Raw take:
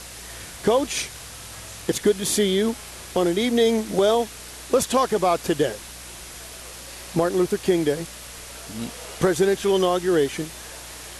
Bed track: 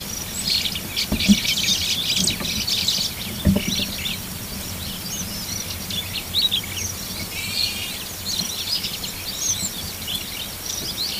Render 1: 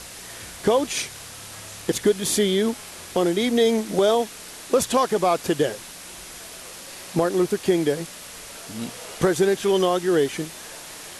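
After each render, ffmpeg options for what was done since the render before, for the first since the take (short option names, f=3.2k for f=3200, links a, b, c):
-af "bandreject=f=60:t=h:w=4,bandreject=f=120:t=h:w=4"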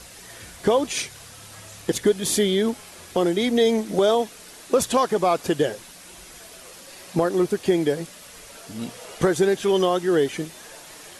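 -af "afftdn=nr=6:nf=-40"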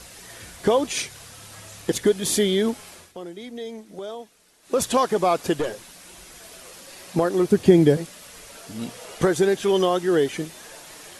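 -filter_complex "[0:a]asettb=1/sr,asplit=3[a][b][c];[a]atrim=end=5.544[d];[b]atrim=start=5.54:end=6.44,asetpts=PTS-STARTPTS,afade=t=in:d=0.004:c=qsin,afade=t=out:st=0.896:d=0.004:c=qsin,aeval=exprs='(tanh(8.91*val(0)+0.35)-tanh(0.35))/8.91':c=same[e];[c]atrim=start=6.436[f];[d][e]acrossfade=d=0.004:c1=hsin:c2=qsin[g];[g][f]acrossfade=d=0.004:c1=qsin:c2=hsin,asettb=1/sr,asplit=3[h][i][j];[h]atrim=end=7.504[k];[i]atrim=start=7.5:end=7.97,asetpts=PTS-STARTPTS,afade=t=in:d=0.004:c=qsin,afade=t=out:st=0.466:d=0.004:c=qsin,equalizer=f=110:t=o:w=3:g=13[l];[j]atrim=start=7.966[m];[k][l]acrossfade=d=0.004:c1=hsin:c2=qsin[n];[n][m]acrossfade=d=0.004:c1=qsin:c2=hsin,asplit=3[o][p][q];[o]atrim=end=3.13,asetpts=PTS-STARTPTS,afade=t=out:st=2.92:d=0.21:silence=0.16788[r];[p]atrim=start=3.13:end=4.62,asetpts=PTS-STARTPTS,volume=-15.5dB[s];[q]atrim=start=4.62,asetpts=PTS-STARTPTS,afade=t=in:d=0.21:silence=0.16788[t];[r][s][t]concat=n=3:v=0:a=1"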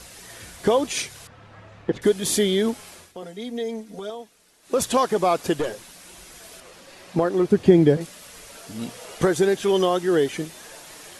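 -filter_complex "[0:a]asettb=1/sr,asplit=3[a][b][c];[a]atrim=end=1.274[d];[b]atrim=start=1.27:end=2.02,asetpts=PTS-STARTPTS,afade=t=in:d=0.004:c=qsin,afade=t=out:st=0.746:d=0.004:c=qsin,lowpass=1.8k[e];[c]atrim=start=2.016[f];[d][e]acrossfade=d=0.004:c1=hsin:c2=qsin[g];[g][f]acrossfade=d=0.004:c1=qsin:c2=hsin,asettb=1/sr,asplit=3[h][i][j];[h]atrim=end=3.224[k];[i]atrim=start=3.22:end=4.1,asetpts=PTS-STARTPTS,afade=t=in:d=0.004:c=qsin,afade=t=out:st=0.876:d=0.004:c=qsin,aecho=1:1:4.3:0.94,atrim=end_sample=38808[l];[j]atrim=start=4.096[m];[k][l]acrossfade=d=0.004:c1=hsin:c2=qsin[n];[n][m]acrossfade=d=0.004:c1=qsin:c2=hsin,asettb=1/sr,asplit=3[o][p][q];[o]atrim=end=6.604[r];[p]atrim=start=6.6:end=8.01,asetpts=PTS-STARTPTS,afade=t=in:d=0.004:c=qsin,afade=t=out:st=1.406:d=0.004:c=qsin,lowpass=f=3.4k:p=1[s];[q]atrim=start=8.006[t];[r][s]acrossfade=d=0.004:c1=hsin:c2=qsin[u];[u][t]acrossfade=d=0.004:c1=qsin:c2=hsin"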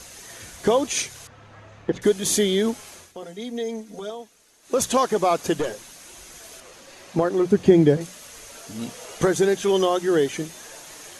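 -af "equalizer=f=6.4k:w=7.4:g=8,bandreject=f=60:t=h:w=6,bandreject=f=120:t=h:w=6,bandreject=f=180:t=h:w=6"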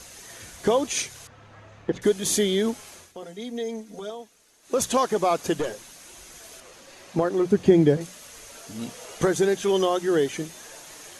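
-af "volume=-2dB"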